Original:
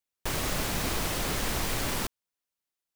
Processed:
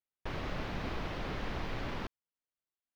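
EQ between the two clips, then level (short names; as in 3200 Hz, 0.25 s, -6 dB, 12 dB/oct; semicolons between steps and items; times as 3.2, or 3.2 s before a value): air absorption 280 m; -5.5 dB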